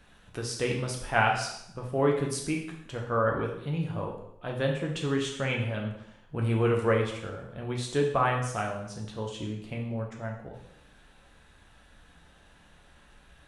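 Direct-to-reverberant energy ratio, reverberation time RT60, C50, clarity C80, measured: −0.5 dB, 0.75 s, 5.5 dB, 8.5 dB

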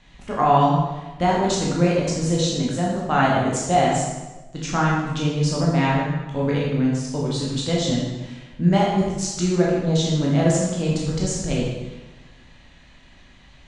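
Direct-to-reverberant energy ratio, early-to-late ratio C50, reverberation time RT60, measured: −4.5 dB, 0.5 dB, 1.1 s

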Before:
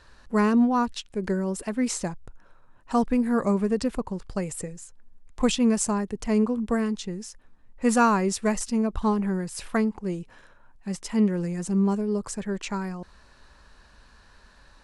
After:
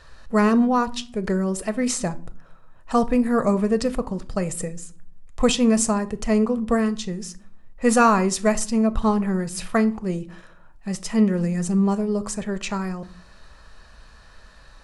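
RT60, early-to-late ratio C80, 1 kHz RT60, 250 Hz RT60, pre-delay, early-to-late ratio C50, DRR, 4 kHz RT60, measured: 0.50 s, 24.0 dB, 0.40 s, 0.80 s, 5 ms, 19.5 dB, 10.5 dB, 0.30 s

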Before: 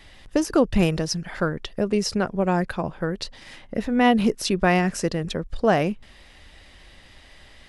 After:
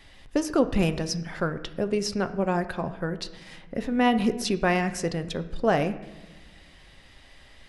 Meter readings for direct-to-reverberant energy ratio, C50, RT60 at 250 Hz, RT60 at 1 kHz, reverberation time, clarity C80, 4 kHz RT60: 9.5 dB, 13.5 dB, 1.8 s, 1.1 s, 1.2 s, 15.5 dB, 0.75 s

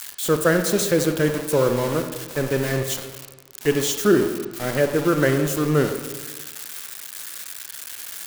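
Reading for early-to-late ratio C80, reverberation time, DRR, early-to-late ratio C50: 9.5 dB, 1.3 s, 6.5 dB, 7.5 dB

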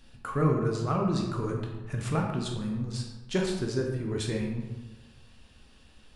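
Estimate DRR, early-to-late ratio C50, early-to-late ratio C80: 0.5 dB, 4.0 dB, 6.0 dB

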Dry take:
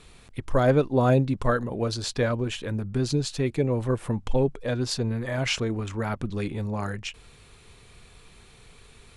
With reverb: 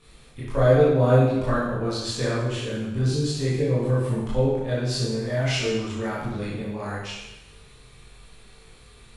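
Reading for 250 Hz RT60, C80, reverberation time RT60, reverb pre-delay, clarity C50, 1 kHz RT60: 1.0 s, 2.5 dB, 0.95 s, 18 ms, −1.0 dB, 0.95 s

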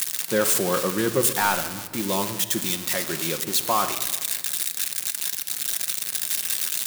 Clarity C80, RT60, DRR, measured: 12.0 dB, 1.5 s, 7.0 dB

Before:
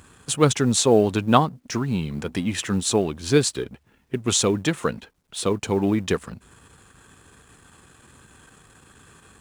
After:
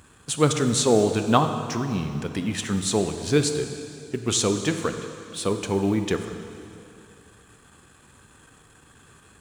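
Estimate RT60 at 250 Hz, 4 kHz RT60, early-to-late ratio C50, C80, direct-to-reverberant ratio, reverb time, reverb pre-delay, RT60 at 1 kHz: 2.5 s, 2.4 s, 8.0 dB, 8.5 dB, 7.0 dB, 2.6 s, 7 ms, 2.6 s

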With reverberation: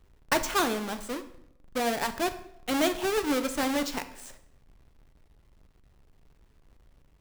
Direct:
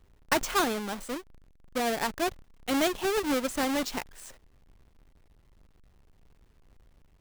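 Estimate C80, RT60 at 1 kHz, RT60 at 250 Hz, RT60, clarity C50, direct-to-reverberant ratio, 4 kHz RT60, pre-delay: 16.0 dB, 0.75 s, 0.85 s, 0.80 s, 13.0 dB, 9.0 dB, 0.60 s, 9 ms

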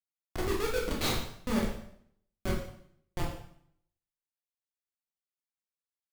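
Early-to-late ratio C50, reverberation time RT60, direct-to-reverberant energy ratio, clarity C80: 4.0 dB, 0.65 s, −2.5 dB, 7.5 dB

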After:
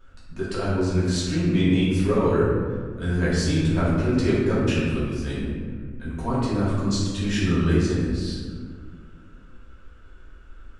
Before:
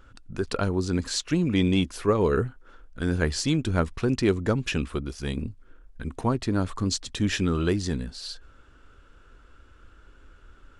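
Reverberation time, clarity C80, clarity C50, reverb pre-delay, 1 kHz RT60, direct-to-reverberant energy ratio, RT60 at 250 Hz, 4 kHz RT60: 1.8 s, 1.0 dB, −1.5 dB, 3 ms, 1.5 s, −10.0 dB, 2.7 s, 0.95 s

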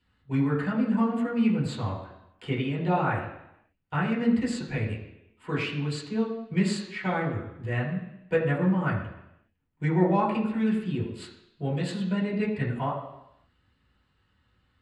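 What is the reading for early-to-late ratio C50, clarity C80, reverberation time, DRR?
5.5 dB, 7.5 dB, 0.85 s, −5.5 dB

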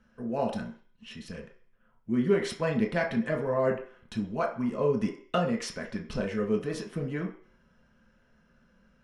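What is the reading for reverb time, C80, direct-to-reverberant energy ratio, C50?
0.50 s, 13.5 dB, 0.5 dB, 9.5 dB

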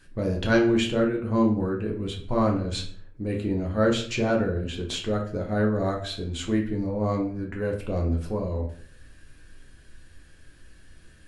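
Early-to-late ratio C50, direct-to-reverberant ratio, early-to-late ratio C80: 8.0 dB, −0.5 dB, 12.5 dB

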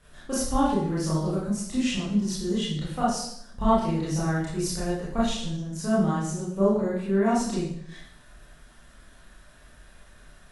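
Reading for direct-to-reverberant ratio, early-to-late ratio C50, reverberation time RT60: −9.0 dB, 0.5 dB, 0.70 s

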